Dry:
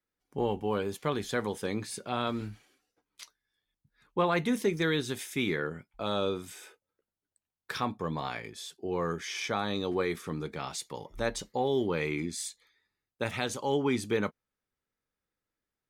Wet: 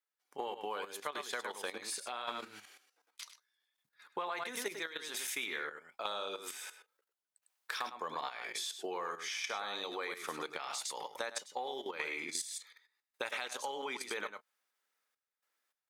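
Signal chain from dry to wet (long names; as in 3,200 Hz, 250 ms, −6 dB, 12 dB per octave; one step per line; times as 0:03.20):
single-tap delay 102 ms −7 dB
sample-and-hold tremolo, depth 70%
output level in coarse steps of 12 dB
high-pass filter 760 Hz 12 dB per octave
downward compressor 6 to 1, threshold −51 dBFS, peak gain reduction 16 dB
level +14.5 dB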